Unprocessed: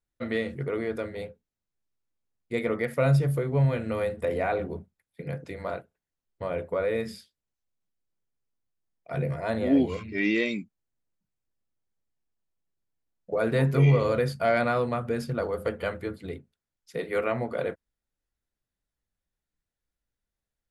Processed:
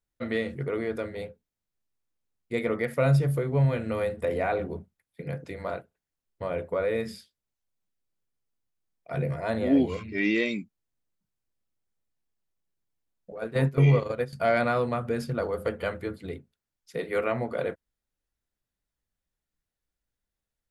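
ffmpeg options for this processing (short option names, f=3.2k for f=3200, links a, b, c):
-filter_complex "[0:a]asettb=1/sr,asplit=3[a][b][c];[a]atrim=end=13.324[d];[b]atrim=start=13.32:end=14.33,asetpts=PTS-STARTPTS,afade=t=in:d=0.004:c=qsin,afade=t=out:st=1.006:d=0.004:c=qsin,agate=range=-14dB:threshold=-24dB:ratio=16:release=100:detection=peak[e];[c]atrim=start=14.326[f];[d][e]acrossfade=d=0.004:c1=hsin:c2=qsin[g];[g][f]acrossfade=d=0.004:c1=qsin:c2=hsin"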